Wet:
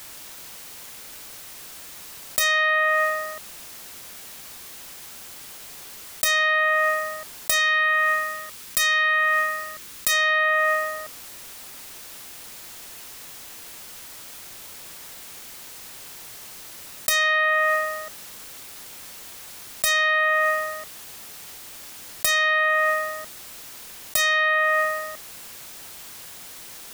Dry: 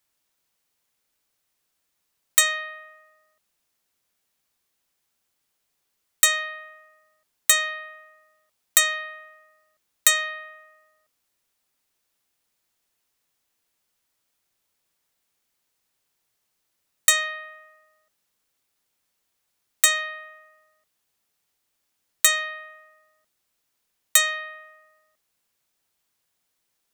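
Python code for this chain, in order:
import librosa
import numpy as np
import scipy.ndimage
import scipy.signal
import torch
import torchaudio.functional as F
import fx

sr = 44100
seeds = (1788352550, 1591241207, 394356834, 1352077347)

y = fx.self_delay(x, sr, depth_ms=0.11)
y = fx.peak_eq(y, sr, hz=700.0, db=-10.0, octaves=0.6, at=(7.58, 10.11), fade=0.02)
y = fx.env_flatten(y, sr, amount_pct=100)
y = y * 10.0 ** (-5.0 / 20.0)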